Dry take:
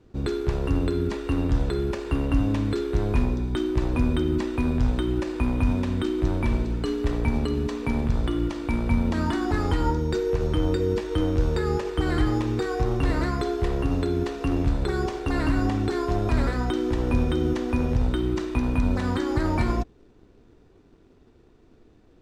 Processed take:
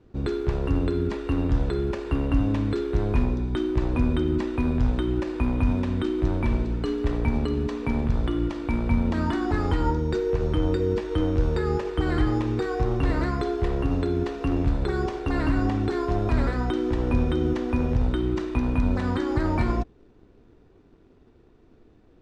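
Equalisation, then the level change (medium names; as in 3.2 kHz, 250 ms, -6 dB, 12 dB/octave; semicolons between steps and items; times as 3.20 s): low-pass 3.6 kHz 6 dB/octave; 0.0 dB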